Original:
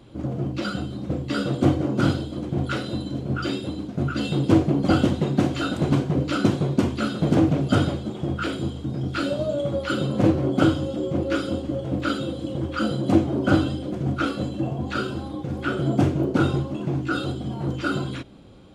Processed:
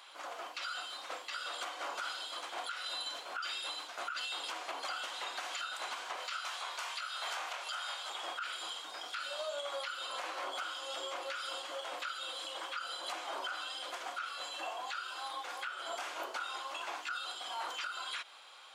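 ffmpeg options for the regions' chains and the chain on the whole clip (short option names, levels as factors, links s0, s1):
-filter_complex "[0:a]asettb=1/sr,asplit=3[s0][s1][s2];[s0]atrim=end=6.164[s3];[s1]atrim=start=6.16:end=8.1,asetpts=PTS-STARTPTS,afade=t=in:d=0.004:c=qsin,afade=t=out:st=1.936:d=0.004:c=qsin,highpass=620,asplit=2[s4][s5];[s5]adelay=24,volume=0.596[s6];[s4][s6]amix=inputs=2:normalize=0,atrim=end_sample=85554[s7];[s2]atrim=start=8.096[s8];[s3][s7]acrossfade=d=0.004:c1=hsin:c2=qsin[s9];[s9][s8]acrossfade=d=0.004:c1=qsin:c2=hsin,highpass=f=950:w=0.5412,highpass=f=950:w=1.3066,acompressor=threshold=0.0112:ratio=6,alimiter=level_in=3.98:limit=0.0631:level=0:latency=1:release=129,volume=0.251,volume=2.11"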